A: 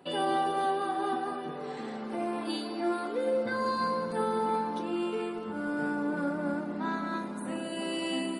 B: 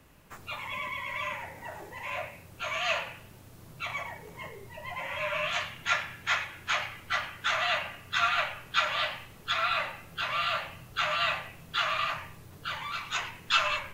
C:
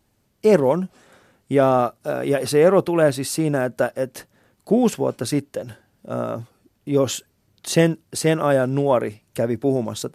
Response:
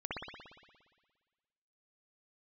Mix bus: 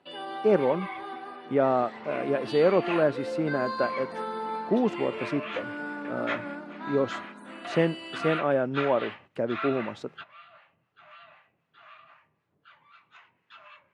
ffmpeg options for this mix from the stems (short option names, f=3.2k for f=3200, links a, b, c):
-filter_complex "[0:a]dynaudnorm=f=260:g=13:m=5dB,crystalizer=i=8.5:c=0,volume=-11.5dB[a];[1:a]acrossover=split=780[b][c];[b]aeval=exprs='val(0)*(1-0.7/2+0.7/2*cos(2*PI*3.9*n/s))':c=same[d];[c]aeval=exprs='val(0)*(1-0.7/2-0.7/2*cos(2*PI*3.9*n/s))':c=same[e];[d][e]amix=inputs=2:normalize=0,volume=-1.5dB[f];[2:a]volume=-6.5dB,asplit=2[g][h];[h]apad=whole_len=614728[i];[f][i]sidechaingate=range=-16dB:threshold=-52dB:ratio=16:detection=peak[j];[a][j][g]amix=inputs=3:normalize=0,highpass=170,lowpass=2.5k"